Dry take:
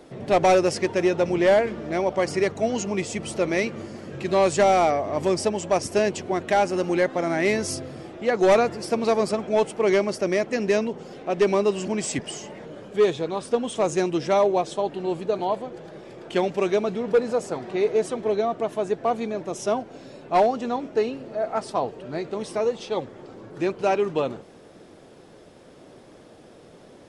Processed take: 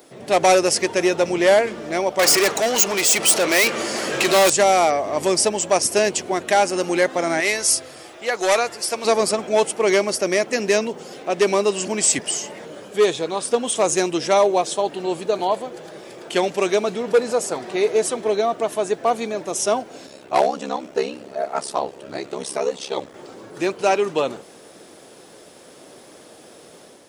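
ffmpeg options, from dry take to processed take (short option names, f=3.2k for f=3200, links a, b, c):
-filter_complex "[0:a]asettb=1/sr,asplit=3[a][b][c];[a]atrim=end=2.194[d];[b]atrim=start=2.19:end=4.5,asetpts=PTS-STARTPTS,afade=t=in:d=0.004:c=qsin,afade=t=out:st=2.306:d=0.004:c=qsin,asplit=2[e][f];[f]highpass=f=720:p=1,volume=23dB,asoftclip=type=tanh:threshold=-11.5dB[g];[e][g]amix=inputs=2:normalize=0,lowpass=f=8k:p=1,volume=-6dB[h];[c]atrim=start=4.496[i];[d][h]acrossfade=d=0.004:c1=hsin:c2=qsin[j];[j][i]acrossfade=d=0.004:c1=qsin:c2=hsin,asettb=1/sr,asplit=3[k][l][m];[k]atrim=end=7.404[n];[l]atrim=start=7.4:end=9.05,asetpts=PTS-STARTPTS,afade=t=in:d=0.004:c=qsin,afade=t=out:st=1.646:d=0.004:c=qsin,equalizer=f=190:t=o:w=2.6:g=-11.5[o];[m]atrim=start=9.046[p];[n][o]acrossfade=d=0.004:c1=hsin:c2=qsin[q];[q][p]acrossfade=d=0.004:c1=qsin:c2=hsin,asettb=1/sr,asplit=3[r][s][t];[r]atrim=end=20.064[u];[s]atrim=start=20.06:end=23.14,asetpts=PTS-STARTPTS,afade=t=in:d=0.004:c=qsin,afade=t=out:st=3.076:d=0.004:c=qsin,aeval=exprs='val(0)*sin(2*PI*34*n/s)':c=same[v];[t]atrim=start=23.136[w];[u][v]acrossfade=d=0.004:c1=hsin:c2=qsin[x];[x][w]acrossfade=d=0.004:c1=qsin:c2=hsin,aemphasis=mode=production:type=bsi,dynaudnorm=f=120:g=5:m=5dB"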